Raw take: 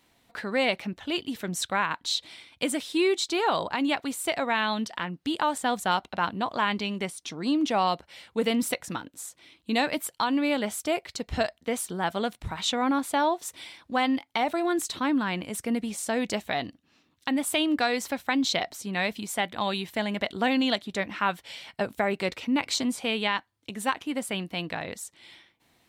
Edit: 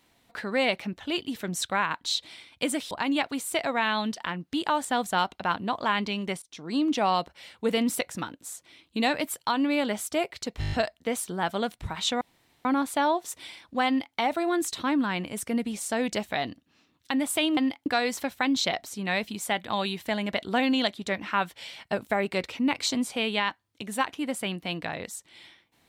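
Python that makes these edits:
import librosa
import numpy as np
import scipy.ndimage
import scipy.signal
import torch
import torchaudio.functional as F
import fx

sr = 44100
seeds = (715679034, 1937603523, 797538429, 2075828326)

y = fx.edit(x, sr, fx.cut(start_s=2.91, length_s=0.73),
    fx.fade_in_from(start_s=7.15, length_s=0.49, curve='qsin', floor_db=-22.5),
    fx.stutter(start_s=11.33, slice_s=0.02, count=7),
    fx.insert_room_tone(at_s=12.82, length_s=0.44),
    fx.duplicate(start_s=14.04, length_s=0.29, to_s=17.74), tone=tone)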